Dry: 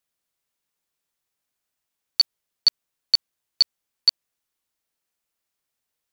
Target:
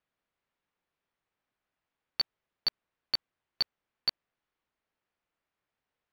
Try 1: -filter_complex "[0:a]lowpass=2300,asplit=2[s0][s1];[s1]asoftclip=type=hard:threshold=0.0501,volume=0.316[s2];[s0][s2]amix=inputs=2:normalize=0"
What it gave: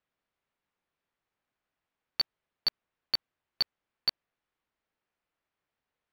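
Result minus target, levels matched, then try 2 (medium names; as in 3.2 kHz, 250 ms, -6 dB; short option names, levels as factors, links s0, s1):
hard clipper: distortion -5 dB
-filter_complex "[0:a]lowpass=2300,asplit=2[s0][s1];[s1]asoftclip=type=hard:threshold=0.0188,volume=0.316[s2];[s0][s2]amix=inputs=2:normalize=0"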